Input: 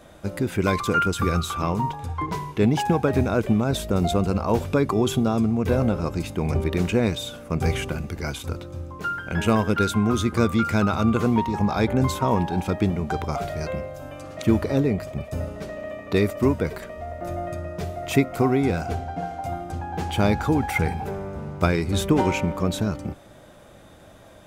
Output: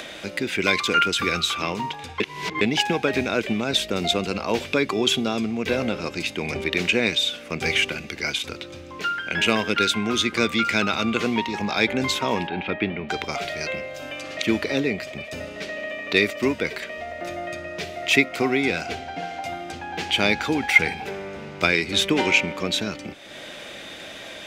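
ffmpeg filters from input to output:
ffmpeg -i in.wav -filter_complex "[0:a]asettb=1/sr,asplit=3[link_01][link_02][link_03];[link_01]atrim=end=12.474[link_04];[link_02]atrim=start=12.47:end=13.09,asetpts=PTS-STARTPTS,afade=type=in:duration=0.004:curve=qsin,afade=type=out:start_time=0.616:duration=0.004:curve=qsin,lowpass=frequency=3000:width=0.5412,lowpass=frequency=3000:width=1.3066[link_05];[link_03]atrim=start=13.086[link_06];[link_04][link_05]acrossfade=duration=0.004:curve1=hsin:curve2=qsin[link_07];[link_07][link_06]acrossfade=duration=0.004:curve1=qsin:curve2=hsin,asplit=3[link_08][link_09][link_10];[link_08]atrim=end=2.202[link_11];[link_09]atrim=start=2.198:end=2.612,asetpts=PTS-STARTPTS,areverse[link_12];[link_10]atrim=start=2.608[link_13];[link_11][link_12]acrossfade=duration=0.004:curve1=hsin:curve2=hsin[link_14];[link_14][link_13]acrossfade=duration=0.004:curve1=hsin:curve2=hsin,highshelf=frequency=1600:width_type=q:width=1.5:gain=10.5,acompressor=mode=upward:threshold=-26dB:ratio=2.5,acrossover=split=210 5900:gain=0.178 1 0.2[link_15][link_16][link_17];[link_15][link_16][link_17]amix=inputs=3:normalize=0" out.wav

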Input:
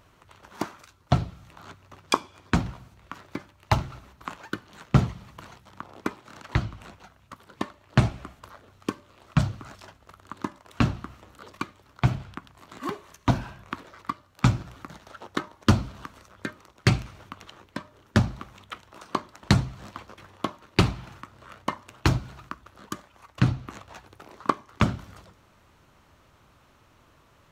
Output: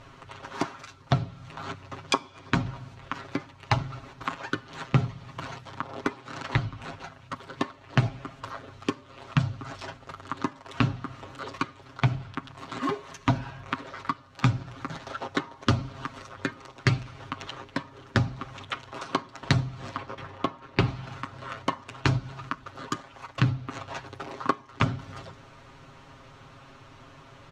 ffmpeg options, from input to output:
ffmpeg -i in.wav -filter_complex "[0:a]asettb=1/sr,asplit=3[link_01][link_02][link_03];[link_01]atrim=end=19.964[link_04];[link_02]atrim=start=19.96:end=20.88,asetpts=PTS-STARTPTS,afade=type=in:duration=0.004:curve=qsin,afade=type=out:start_time=0.916:duration=0.004:curve=qsin,highshelf=frequency=4000:gain=-9.5[link_05];[link_03]atrim=start=20.876[link_06];[link_04][link_05]acrossfade=duration=0.004:curve1=hsin:curve2=qsin[link_07];[link_07][link_06]acrossfade=duration=0.004:curve1=qsin:curve2=hsin,lowpass=5900,aecho=1:1:7.4:0.83,acompressor=threshold=-37dB:ratio=2,volume=7dB" out.wav

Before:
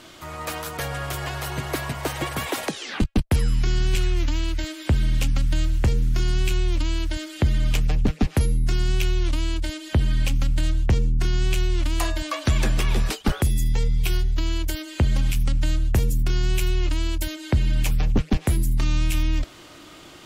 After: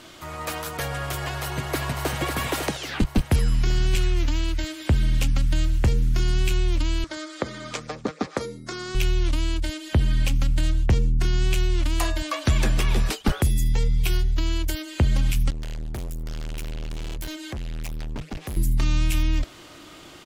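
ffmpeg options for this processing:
ffmpeg -i in.wav -filter_complex "[0:a]asplit=2[link_01][link_02];[link_02]afade=type=in:start_time=1.2:duration=0.01,afade=type=out:start_time=2.21:duration=0.01,aecho=0:1:550|1100|1650|2200|2750|3300:0.562341|0.253054|0.113874|0.0512434|0.0230595|0.0103768[link_03];[link_01][link_03]amix=inputs=2:normalize=0,asettb=1/sr,asplit=3[link_04][link_05][link_06];[link_04]atrim=end=7.044[link_07];[link_05]atrim=start=7.04:end=8.95,asetpts=PTS-STARTPTS,afade=type=in:duration=0.004:curve=qsin,afade=type=out:start_time=1.906:duration=0.004:curve=qsin,highpass=300,equalizer=frequency=520:width_type=q:width=4:gain=6,equalizer=frequency=1200:width_type=q:width=4:gain=9,equalizer=frequency=2800:width_type=q:width=4:gain=-10,lowpass=frequency=8000:width=0.5412,lowpass=frequency=8000:width=1.3066[link_08];[link_06]atrim=start=8.946[link_09];[link_07][link_08]acrossfade=duration=0.004:curve1=hsin:curve2=qsin[link_10];[link_10][link_09]acrossfade=duration=0.004:curve1=qsin:curve2=hsin,asettb=1/sr,asplit=3[link_11][link_12][link_13];[link_11]atrim=end=15.504[link_14];[link_12]atrim=start=15.5:end=18.57,asetpts=PTS-STARTPTS,afade=type=in:duration=0.004:curve=qsin,afade=type=out:start_time=3.066:duration=0.004:curve=qsin,asoftclip=type=hard:threshold=-29dB[link_15];[link_13]atrim=start=18.566[link_16];[link_14][link_15]acrossfade=duration=0.004:curve1=hsin:curve2=qsin[link_17];[link_17][link_16]acrossfade=duration=0.004:curve1=qsin:curve2=hsin" out.wav

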